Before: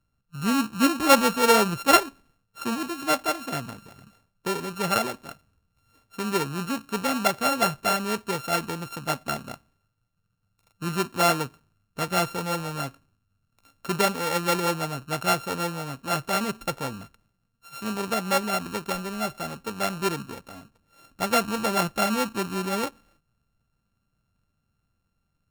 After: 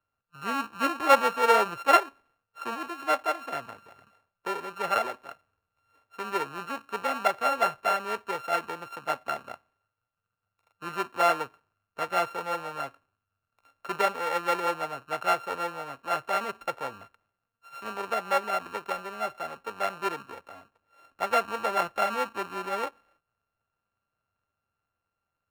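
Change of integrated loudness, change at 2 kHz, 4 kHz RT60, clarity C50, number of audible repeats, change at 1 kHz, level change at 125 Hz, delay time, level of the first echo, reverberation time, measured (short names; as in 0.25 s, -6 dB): -3.0 dB, -2.5 dB, none, none, none, -0.5 dB, -17.0 dB, none, none, none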